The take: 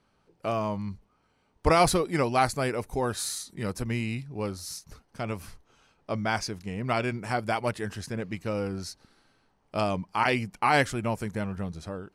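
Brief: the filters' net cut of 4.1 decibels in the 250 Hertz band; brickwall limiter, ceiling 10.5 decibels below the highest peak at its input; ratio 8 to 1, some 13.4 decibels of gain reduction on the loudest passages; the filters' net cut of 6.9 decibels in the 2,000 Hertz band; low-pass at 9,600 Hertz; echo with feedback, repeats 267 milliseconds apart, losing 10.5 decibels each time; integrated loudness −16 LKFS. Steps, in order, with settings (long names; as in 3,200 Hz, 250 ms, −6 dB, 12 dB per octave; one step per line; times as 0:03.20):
low-pass filter 9,600 Hz
parametric band 250 Hz −5.5 dB
parametric band 2,000 Hz −9 dB
downward compressor 8 to 1, threshold −32 dBFS
brickwall limiter −30.5 dBFS
repeating echo 267 ms, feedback 30%, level −10.5 dB
level +24.5 dB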